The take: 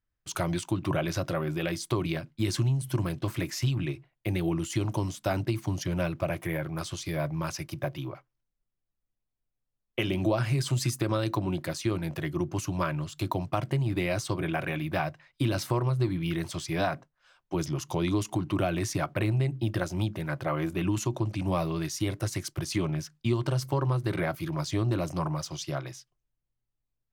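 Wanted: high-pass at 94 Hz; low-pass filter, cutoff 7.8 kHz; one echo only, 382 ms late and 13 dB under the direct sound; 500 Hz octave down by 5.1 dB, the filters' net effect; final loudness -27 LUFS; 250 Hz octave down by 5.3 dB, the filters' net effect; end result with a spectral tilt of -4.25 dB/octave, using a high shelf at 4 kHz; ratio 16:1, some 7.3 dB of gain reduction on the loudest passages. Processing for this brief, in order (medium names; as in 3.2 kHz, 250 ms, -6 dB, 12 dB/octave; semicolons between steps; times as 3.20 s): high-pass 94 Hz; low-pass 7.8 kHz; peaking EQ 250 Hz -6.5 dB; peaking EQ 500 Hz -5 dB; treble shelf 4 kHz +5.5 dB; compression 16:1, threshold -32 dBFS; delay 382 ms -13 dB; trim +10 dB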